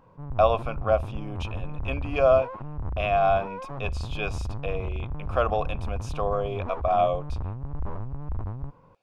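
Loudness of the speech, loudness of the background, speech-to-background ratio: −26.5 LKFS, −35.0 LKFS, 8.5 dB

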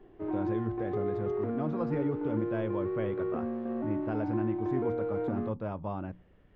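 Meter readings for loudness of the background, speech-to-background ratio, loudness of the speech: −34.0 LKFS, −2.5 dB, −36.5 LKFS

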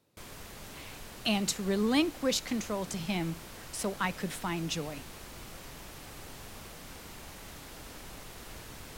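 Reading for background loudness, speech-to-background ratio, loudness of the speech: −46.0 LKFS, 13.5 dB, −32.5 LKFS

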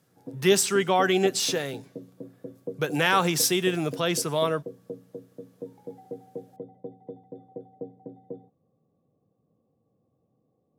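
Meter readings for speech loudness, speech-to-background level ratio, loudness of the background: −24.0 LKFS, 18.0 dB, −42.0 LKFS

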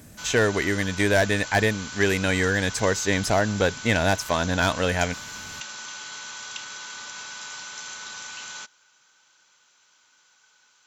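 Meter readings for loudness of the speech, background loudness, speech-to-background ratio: −23.5 LKFS, −35.5 LKFS, 12.0 dB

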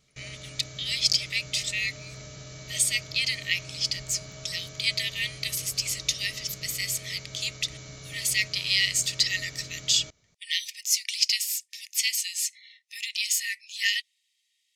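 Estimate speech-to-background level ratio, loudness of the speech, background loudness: 16.0 dB, −26.5 LKFS, −42.5 LKFS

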